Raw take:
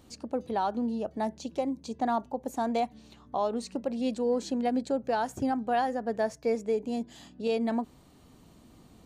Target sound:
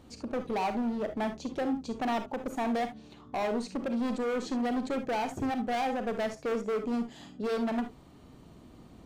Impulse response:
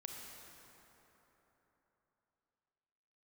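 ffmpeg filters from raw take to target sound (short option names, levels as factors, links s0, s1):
-filter_complex "[0:a]highshelf=f=4300:g=-10,volume=35.5,asoftclip=hard,volume=0.0282[s0];[1:a]atrim=start_sample=2205,atrim=end_sample=3528[s1];[s0][s1]afir=irnorm=-1:irlink=0,volume=2.66"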